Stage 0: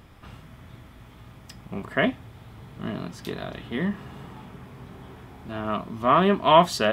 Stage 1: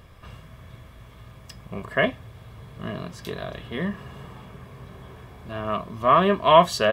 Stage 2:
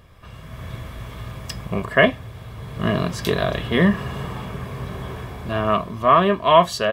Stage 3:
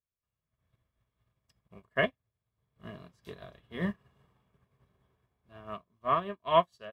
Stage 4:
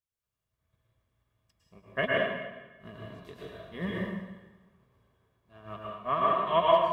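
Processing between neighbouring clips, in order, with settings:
comb filter 1.8 ms, depth 47%
automatic gain control gain up to 13 dB; level −1 dB
expander for the loud parts 2.5 to 1, over −37 dBFS; level −8.5 dB
dense smooth reverb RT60 1.2 s, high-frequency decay 0.9×, pre-delay 95 ms, DRR −4.5 dB; level −2.5 dB

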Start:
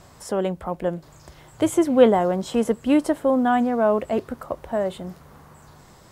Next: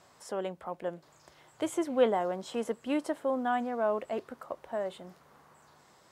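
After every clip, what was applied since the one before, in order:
high-pass filter 470 Hz 6 dB per octave
high-shelf EQ 10,000 Hz −8 dB
level −7.5 dB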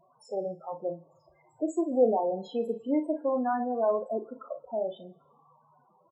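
spectral peaks only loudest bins 8
on a send: ambience of single reflections 36 ms −9 dB, 55 ms −14 dB
on the sum: feedback delay network reverb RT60 1.1 s, low-frequency decay 0.7×, high-frequency decay 0.95×, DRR 19.5 dB
level +2.5 dB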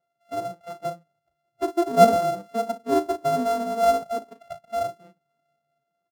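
samples sorted by size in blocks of 64 samples
dynamic equaliser 2,400 Hz, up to −7 dB, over −44 dBFS, Q 1.1
every bin expanded away from the loudest bin 1.5 to 1
level +9 dB

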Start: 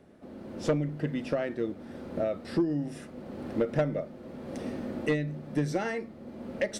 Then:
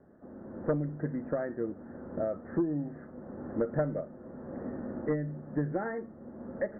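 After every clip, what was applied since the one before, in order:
Butterworth low-pass 1,800 Hz 72 dB per octave
level −2.5 dB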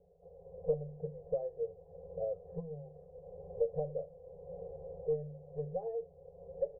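inverse Chebyshev low-pass filter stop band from 1,300 Hz, stop band 40 dB
brick-wall band-stop 180–370 Hz
comb filter 4 ms, depth 100%
level −4 dB

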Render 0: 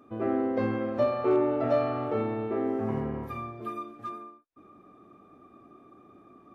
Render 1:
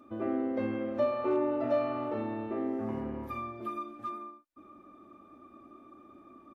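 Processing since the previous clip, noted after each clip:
comb filter 3.4 ms, depth 55%
in parallel at −0.5 dB: downward compressor, threshold −34 dBFS, peak gain reduction 16 dB
on the sum: level −8 dB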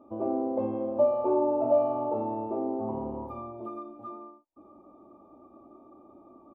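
drawn EQ curve 260 Hz 0 dB, 920 Hz +9 dB, 1,800 Hz −25 dB, 2,700 Hz −14 dB, 3,900 Hz −17 dB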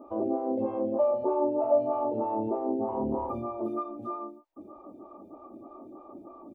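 in parallel at −1 dB: compressor whose output falls as the input rises −36 dBFS, ratio −1
on the sum: phaser with staggered stages 3.2 Hz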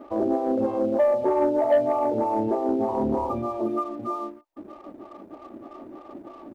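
leveller curve on the samples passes 1
level +2 dB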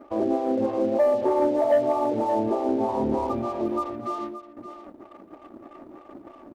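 in parallel at −3 dB: dead-zone distortion −39 dBFS
on the sum: single-tap delay 574 ms −12 dB
level −4.5 dB

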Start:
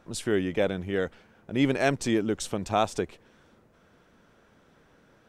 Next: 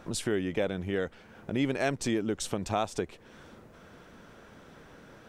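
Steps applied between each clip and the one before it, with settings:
downward compressor 2 to 1, threshold −44 dBFS, peak gain reduction 14 dB
level +8 dB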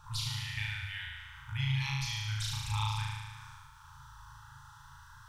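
brick-wall band-stop 140–820 Hz
phaser swept by the level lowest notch 330 Hz, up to 1,600 Hz, full sweep at −33 dBFS
flutter between parallel walls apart 6.4 metres, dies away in 1.5 s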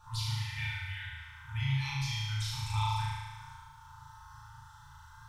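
feedback delay network reverb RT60 0.51 s, low-frequency decay 1.55×, high-frequency decay 0.6×, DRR −3.5 dB
level −5.5 dB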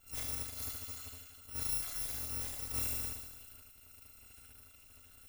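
samples in bit-reversed order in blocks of 256 samples
level −5.5 dB

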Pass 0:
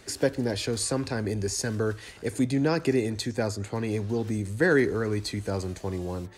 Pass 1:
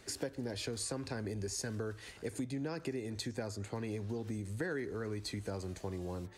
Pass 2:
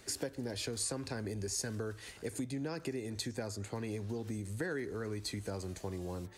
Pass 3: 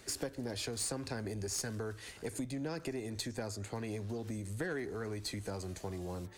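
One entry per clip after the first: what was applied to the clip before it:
downward compressor 6 to 1, threshold −29 dBFS, peak gain reduction 11.5 dB; level −6 dB
high-shelf EQ 6,500 Hz +6 dB
one-sided soft clipper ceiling −31 dBFS; level +1 dB

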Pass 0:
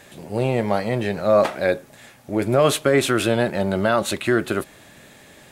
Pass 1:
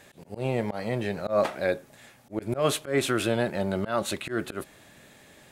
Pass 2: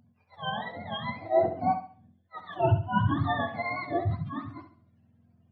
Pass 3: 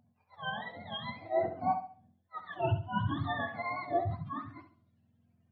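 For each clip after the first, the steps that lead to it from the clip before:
volume swells 118 ms; level −6 dB
frequency axis turned over on the octave scale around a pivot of 640 Hz; flutter between parallel walls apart 11.7 metres, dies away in 0.61 s; every bin expanded away from the loudest bin 1.5 to 1
auto-filter bell 0.5 Hz 730–3,900 Hz +8 dB; level −7 dB

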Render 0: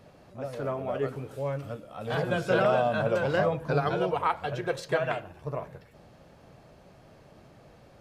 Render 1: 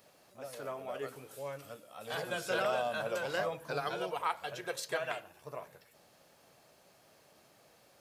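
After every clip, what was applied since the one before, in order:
RIAA equalisation recording
level −7 dB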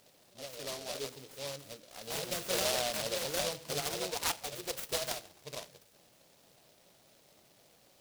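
short delay modulated by noise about 3,900 Hz, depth 0.2 ms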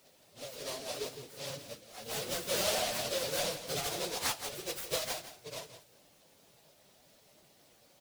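random phases in long frames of 50 ms
single-tap delay 167 ms −12.5 dB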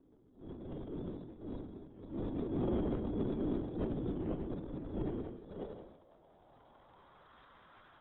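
voice inversion scrambler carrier 3,900 Hz
low-pass filter sweep 310 Hz → 1,300 Hz, 0:05.12–0:07.40
transient designer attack −8 dB, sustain +11 dB
level +7.5 dB

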